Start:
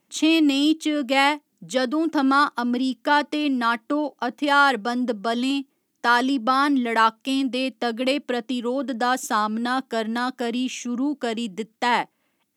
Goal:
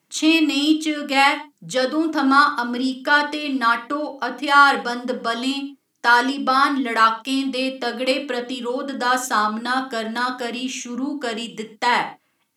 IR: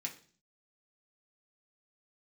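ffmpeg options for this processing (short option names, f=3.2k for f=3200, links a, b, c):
-filter_complex "[0:a]asplit=2[a][b];[1:a]atrim=start_sample=2205,atrim=end_sample=3528,asetrate=25578,aresample=44100[c];[b][c]afir=irnorm=-1:irlink=0,volume=0dB[d];[a][d]amix=inputs=2:normalize=0,volume=-3dB"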